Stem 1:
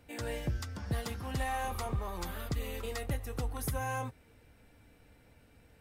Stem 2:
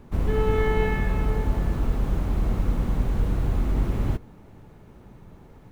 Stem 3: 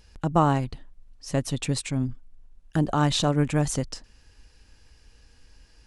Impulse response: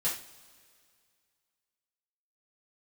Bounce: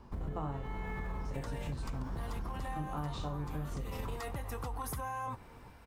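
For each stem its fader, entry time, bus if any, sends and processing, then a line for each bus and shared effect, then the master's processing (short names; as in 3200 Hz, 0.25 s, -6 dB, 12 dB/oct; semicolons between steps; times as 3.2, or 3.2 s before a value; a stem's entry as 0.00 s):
+2.0 dB, 1.25 s, bus A, no send, dry
-8.0 dB, 0.00 s, bus A, send -12.5 dB, notch 2700 Hz; rotary speaker horn 0.85 Hz
-11.5 dB, 0.00 s, no bus, send -5.5 dB, stepped spectrum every 50 ms; LPF 2700 Hz 6 dB/oct
bus A: 0.0 dB, bell 1000 Hz +13 dB 0.83 oct; limiter -27.5 dBFS, peak gain reduction 12 dB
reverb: on, pre-delay 3 ms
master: compressor, threshold -35 dBFS, peak gain reduction 12.5 dB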